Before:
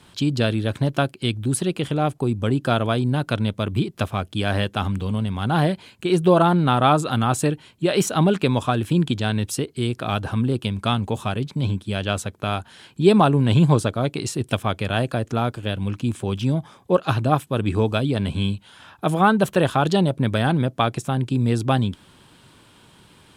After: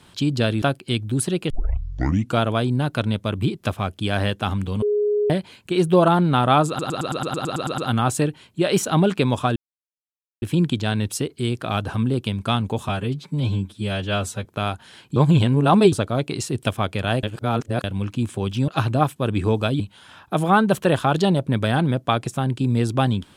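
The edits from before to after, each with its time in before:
0.62–0.96 cut
1.84 tape start 0.90 s
5.16–5.64 bleep 416 Hz -17 dBFS
7.02 stutter 0.11 s, 11 plays
8.8 insert silence 0.86 s
11.27–12.31 stretch 1.5×
13.02–13.78 reverse
15.09–15.7 reverse
16.54–16.99 cut
18.11–18.51 cut

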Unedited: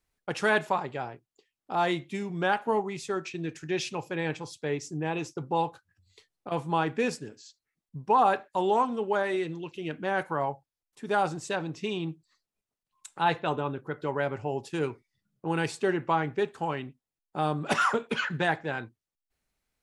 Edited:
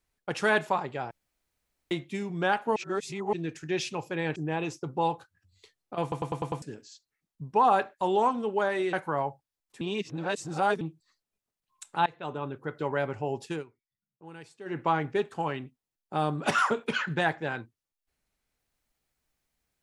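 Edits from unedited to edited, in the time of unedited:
1.11–1.91 room tone
2.76–3.33 reverse
4.36–4.9 cut
6.56 stutter in place 0.10 s, 6 plays
9.47–10.16 cut
11.04–12.04 reverse
13.29–14.1 fade in equal-power, from -23.5 dB
14.73–16.02 dip -17.5 dB, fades 0.14 s

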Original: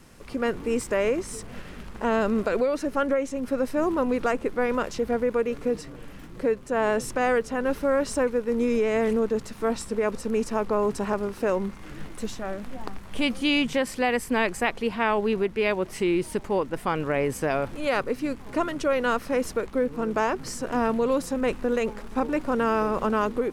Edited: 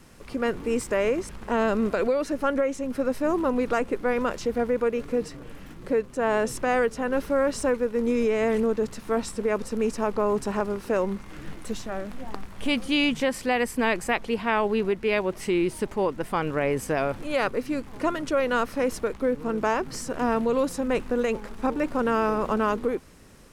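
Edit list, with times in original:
1.29–1.82 cut

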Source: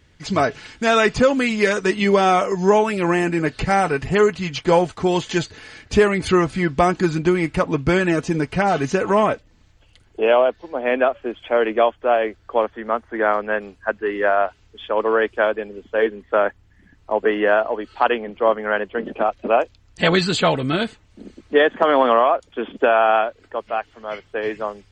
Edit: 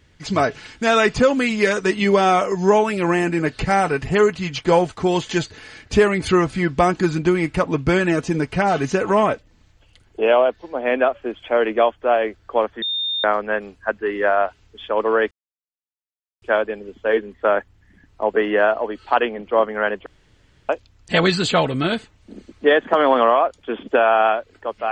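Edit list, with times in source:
12.82–13.24 bleep 3640 Hz -20.5 dBFS
15.31 insert silence 1.11 s
18.95–19.58 room tone

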